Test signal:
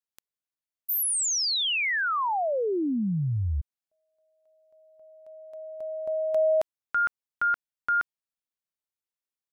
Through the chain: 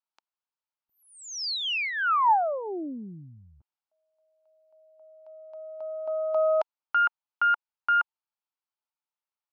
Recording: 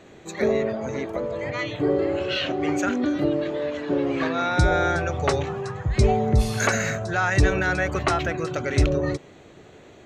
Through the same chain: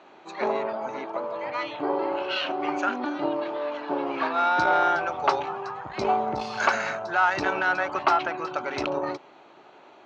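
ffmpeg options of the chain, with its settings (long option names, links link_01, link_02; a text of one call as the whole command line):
ffmpeg -i in.wav -af "aeval=exprs='0.447*(cos(1*acos(clip(val(0)/0.447,-1,1)))-cos(1*PI/2))+0.0562*(cos(4*acos(clip(val(0)/0.447,-1,1)))-cos(4*PI/2))':channel_layout=same,highpass=410,equalizer=frequency=470:width_type=q:width=4:gain=-8,equalizer=frequency=890:width_type=q:width=4:gain=9,equalizer=frequency=1300:width_type=q:width=4:gain=4,equalizer=frequency=1900:width_type=q:width=4:gain=-7,equalizer=frequency=3600:width_type=q:width=4:gain=-5,lowpass=frequency=4700:width=0.5412,lowpass=frequency=4700:width=1.3066" out.wav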